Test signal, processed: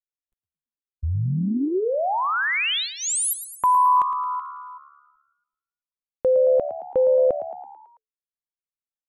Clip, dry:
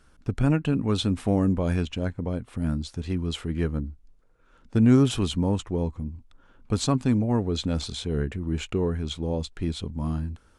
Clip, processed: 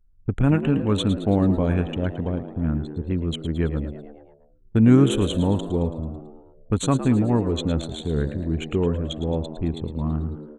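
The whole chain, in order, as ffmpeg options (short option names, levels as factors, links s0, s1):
-filter_complex "[0:a]anlmdn=10,asuperstop=centerf=5000:order=4:qfactor=1.9,asplit=7[s0][s1][s2][s3][s4][s5][s6];[s1]adelay=110,afreqshift=72,volume=0.251[s7];[s2]adelay=220,afreqshift=144,volume=0.141[s8];[s3]adelay=330,afreqshift=216,volume=0.0785[s9];[s4]adelay=440,afreqshift=288,volume=0.0442[s10];[s5]adelay=550,afreqshift=360,volume=0.0248[s11];[s6]adelay=660,afreqshift=432,volume=0.0138[s12];[s0][s7][s8][s9][s10][s11][s12]amix=inputs=7:normalize=0,volume=1.41"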